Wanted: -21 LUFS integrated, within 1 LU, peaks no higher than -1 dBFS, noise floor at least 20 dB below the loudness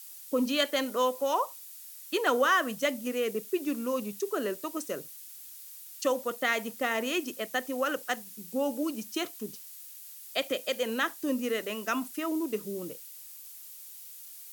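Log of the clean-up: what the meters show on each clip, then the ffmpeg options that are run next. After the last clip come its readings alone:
noise floor -47 dBFS; noise floor target -51 dBFS; loudness -31.0 LUFS; peak -12.0 dBFS; loudness target -21.0 LUFS
-> -af "afftdn=nr=6:nf=-47"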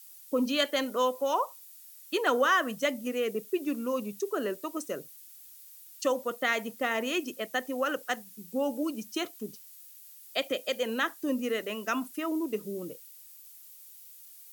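noise floor -51 dBFS; loudness -31.0 LUFS; peak -12.5 dBFS; loudness target -21.0 LUFS
-> -af "volume=10dB"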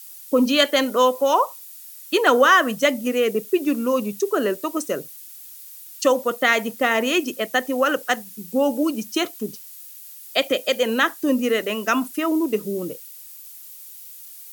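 loudness -21.0 LUFS; peak -2.5 dBFS; noise floor -41 dBFS

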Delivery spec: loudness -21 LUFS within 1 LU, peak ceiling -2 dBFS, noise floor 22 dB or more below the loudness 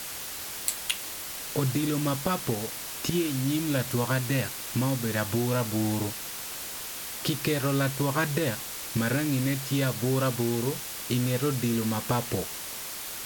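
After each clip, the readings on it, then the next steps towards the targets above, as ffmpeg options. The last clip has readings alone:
noise floor -37 dBFS; noise floor target -51 dBFS; loudness -28.5 LUFS; peak -9.5 dBFS; loudness target -21.0 LUFS
-> -af "afftdn=nr=14:nf=-37"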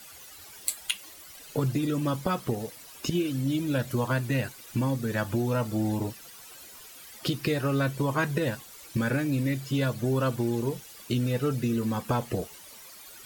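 noise floor -48 dBFS; noise floor target -51 dBFS
-> -af "afftdn=nr=6:nf=-48"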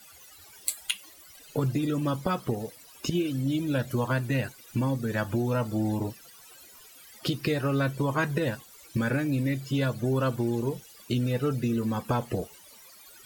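noise floor -52 dBFS; loudness -29.0 LUFS; peak -10.5 dBFS; loudness target -21.0 LUFS
-> -af "volume=8dB"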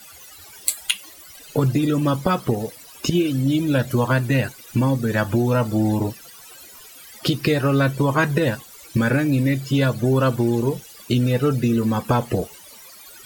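loudness -21.0 LUFS; peak -2.5 dBFS; noise floor -44 dBFS

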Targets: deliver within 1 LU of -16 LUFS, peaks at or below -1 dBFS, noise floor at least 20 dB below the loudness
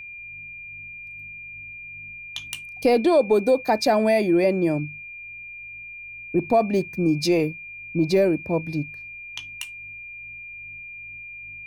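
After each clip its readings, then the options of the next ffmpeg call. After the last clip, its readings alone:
steady tone 2400 Hz; tone level -36 dBFS; loudness -22.5 LUFS; peak -8.5 dBFS; loudness target -16.0 LUFS
-> -af "bandreject=f=2.4k:w=30"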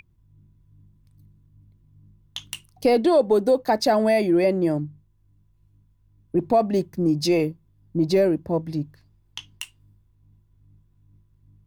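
steady tone none; loudness -21.5 LUFS; peak -9.0 dBFS; loudness target -16.0 LUFS
-> -af "volume=5.5dB"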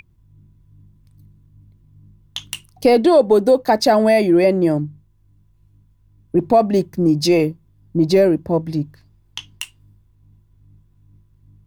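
loudness -16.0 LUFS; peak -3.5 dBFS; noise floor -56 dBFS

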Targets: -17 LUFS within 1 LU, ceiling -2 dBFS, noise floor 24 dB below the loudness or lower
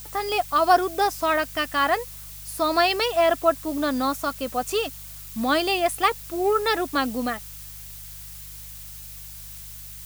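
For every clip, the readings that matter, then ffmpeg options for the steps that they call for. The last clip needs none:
hum 50 Hz; harmonics up to 150 Hz; hum level -43 dBFS; noise floor -40 dBFS; noise floor target -47 dBFS; loudness -23.0 LUFS; peak -5.0 dBFS; loudness target -17.0 LUFS
-> -af "bandreject=f=50:t=h:w=4,bandreject=f=100:t=h:w=4,bandreject=f=150:t=h:w=4"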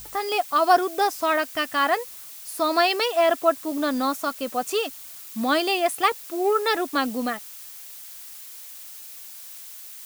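hum none; noise floor -41 dBFS; noise floor target -47 dBFS
-> -af "afftdn=nr=6:nf=-41"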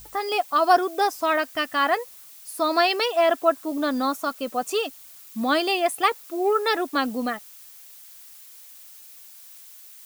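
noise floor -46 dBFS; noise floor target -48 dBFS
-> -af "afftdn=nr=6:nf=-46"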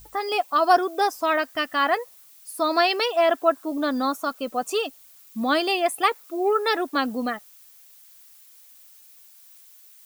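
noise floor -51 dBFS; loudness -23.5 LUFS; peak -5.0 dBFS; loudness target -17.0 LUFS
-> -af "volume=6.5dB,alimiter=limit=-2dB:level=0:latency=1"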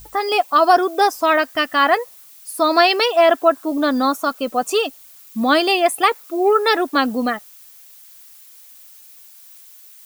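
loudness -17.0 LUFS; peak -2.0 dBFS; noise floor -45 dBFS

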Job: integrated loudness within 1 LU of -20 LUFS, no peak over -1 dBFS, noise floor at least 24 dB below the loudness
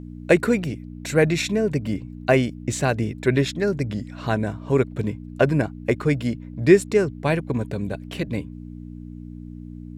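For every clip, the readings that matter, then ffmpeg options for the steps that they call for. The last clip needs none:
hum 60 Hz; harmonics up to 300 Hz; hum level -35 dBFS; loudness -23.0 LUFS; peak -3.0 dBFS; loudness target -20.0 LUFS
-> -af "bandreject=f=60:t=h:w=4,bandreject=f=120:t=h:w=4,bandreject=f=180:t=h:w=4,bandreject=f=240:t=h:w=4,bandreject=f=300:t=h:w=4"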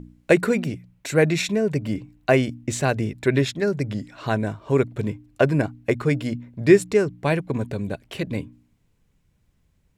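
hum none; loudness -23.0 LUFS; peak -3.0 dBFS; loudness target -20.0 LUFS
-> -af "volume=3dB,alimiter=limit=-1dB:level=0:latency=1"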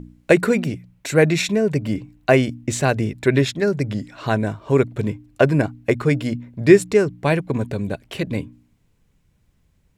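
loudness -20.0 LUFS; peak -1.0 dBFS; noise floor -63 dBFS

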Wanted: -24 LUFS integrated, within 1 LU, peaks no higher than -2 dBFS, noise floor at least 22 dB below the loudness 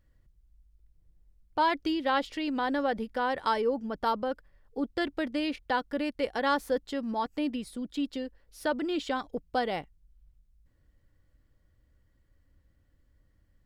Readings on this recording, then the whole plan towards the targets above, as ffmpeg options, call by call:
loudness -31.0 LUFS; peak -14.5 dBFS; loudness target -24.0 LUFS
-> -af "volume=7dB"

